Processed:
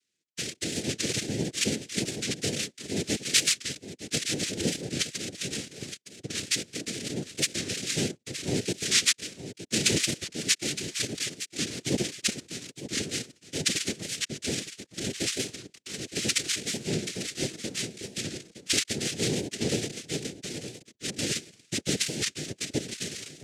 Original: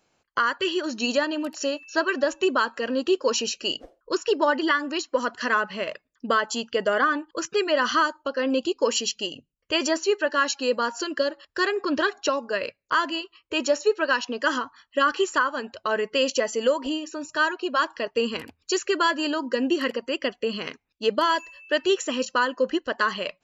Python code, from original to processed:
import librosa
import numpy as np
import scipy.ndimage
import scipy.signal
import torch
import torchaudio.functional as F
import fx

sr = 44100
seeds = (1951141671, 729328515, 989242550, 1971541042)

y = fx.cycle_switch(x, sr, every=2, mode='inverted')
y = scipy.signal.sosfilt(scipy.signal.cheby1(4, 1.0, [150.0, 5200.0], 'bandstop', fs=sr, output='sos'), y)
y = y + 0.49 * np.pad(y, (int(4.6 * sr / 1000.0), 0))[:len(y)]
y = fx.leveller(y, sr, passes=2)
y = fx.noise_vocoder(y, sr, seeds[0], bands=3)
y = y + 10.0 ** (-12.0 / 20.0) * np.pad(y, (int(916 * sr / 1000.0), 0))[:len(y)]
y = fx.record_warp(y, sr, rpm=45.0, depth_cents=100.0)